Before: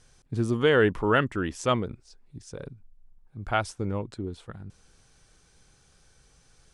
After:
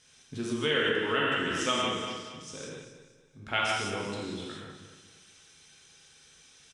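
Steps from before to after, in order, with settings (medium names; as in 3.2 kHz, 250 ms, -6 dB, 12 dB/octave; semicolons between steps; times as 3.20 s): band-stop 4.5 kHz, Q 7.7; on a send: feedback delay 235 ms, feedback 36%, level -10.5 dB; on the sum: gated-style reverb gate 220 ms flat, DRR -5 dB; compression 3:1, threshold -20 dBFS, peak gain reduction 8 dB; frequency weighting D; trim -7 dB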